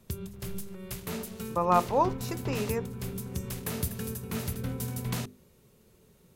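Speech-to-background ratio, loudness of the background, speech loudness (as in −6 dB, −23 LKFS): 7.0 dB, −36.0 LKFS, −29.0 LKFS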